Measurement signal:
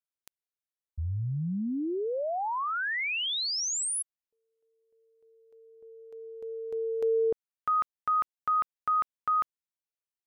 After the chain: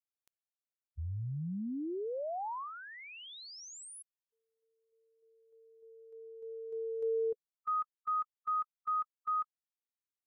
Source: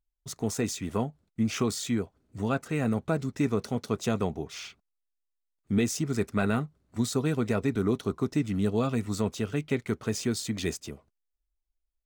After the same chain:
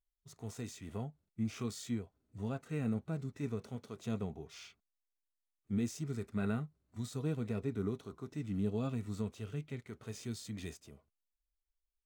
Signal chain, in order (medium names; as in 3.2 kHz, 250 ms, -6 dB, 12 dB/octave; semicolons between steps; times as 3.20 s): harmonic-percussive split percussive -12 dB; trim -6.5 dB